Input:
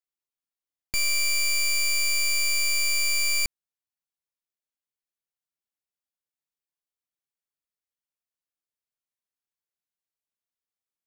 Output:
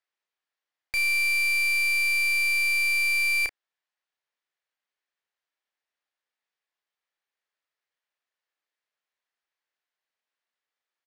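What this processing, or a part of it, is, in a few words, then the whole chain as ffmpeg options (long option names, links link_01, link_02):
megaphone: -filter_complex "[0:a]highpass=470,lowpass=3900,equalizer=frequency=1800:width_type=o:width=0.4:gain=5,asoftclip=type=hard:threshold=-32dB,asplit=2[link_01][link_02];[link_02]adelay=32,volume=-8.5dB[link_03];[link_01][link_03]amix=inputs=2:normalize=0,volume=8dB"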